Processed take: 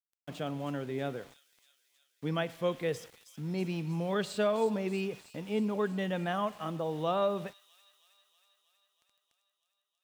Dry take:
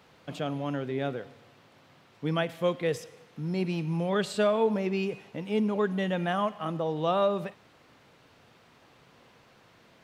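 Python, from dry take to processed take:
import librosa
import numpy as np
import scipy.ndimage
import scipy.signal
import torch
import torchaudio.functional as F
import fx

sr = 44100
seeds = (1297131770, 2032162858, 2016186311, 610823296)

p1 = np.where(np.abs(x) >= 10.0 ** (-47.0 / 20.0), x, 0.0)
p2 = p1 + fx.echo_wet_highpass(p1, sr, ms=319, feedback_pct=69, hz=5500.0, wet_db=-6.5, dry=0)
y = F.gain(torch.from_numpy(p2), -4.0).numpy()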